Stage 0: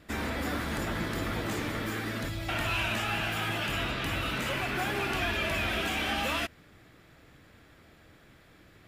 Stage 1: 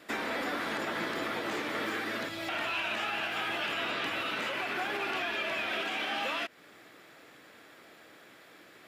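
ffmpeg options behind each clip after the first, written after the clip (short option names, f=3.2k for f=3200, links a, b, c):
-filter_complex "[0:a]acrossover=split=5200[a][b];[b]acompressor=threshold=-56dB:ratio=4:attack=1:release=60[c];[a][c]amix=inputs=2:normalize=0,highpass=340,alimiter=level_in=5dB:limit=-24dB:level=0:latency=1:release=248,volume=-5dB,volume=5dB"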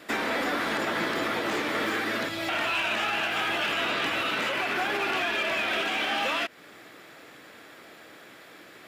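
-af "asoftclip=type=hard:threshold=-27.5dB,volume=6dB"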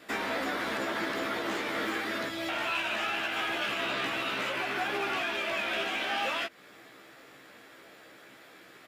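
-filter_complex "[0:a]asplit=2[a][b];[b]adelay=15,volume=-4dB[c];[a][c]amix=inputs=2:normalize=0,volume=-5.5dB"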